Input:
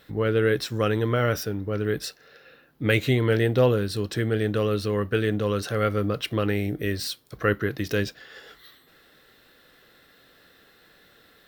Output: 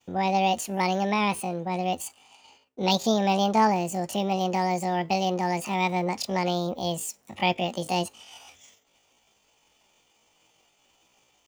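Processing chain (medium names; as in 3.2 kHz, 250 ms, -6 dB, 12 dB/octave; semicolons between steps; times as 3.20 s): expander -50 dBFS; pitch shift +9.5 st; trim -1.5 dB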